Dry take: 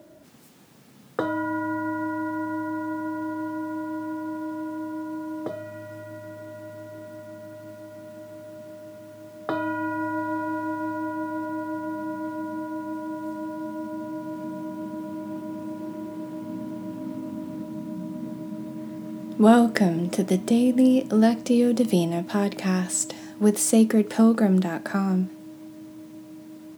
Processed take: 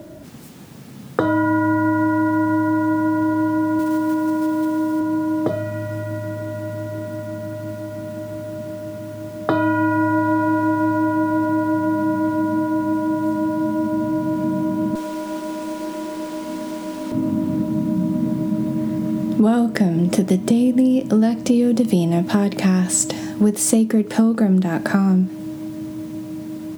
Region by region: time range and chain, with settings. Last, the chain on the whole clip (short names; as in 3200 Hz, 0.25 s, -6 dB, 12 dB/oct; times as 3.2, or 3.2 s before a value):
3.79–5.01 block floating point 5-bit + HPF 140 Hz
14.95–17.12 HPF 440 Hz + high shelf 2500 Hz +10.5 dB + running maximum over 3 samples
whole clip: low shelf 190 Hz +11 dB; compressor 6:1, threshold -23 dBFS; maximiser +10.5 dB; gain -1 dB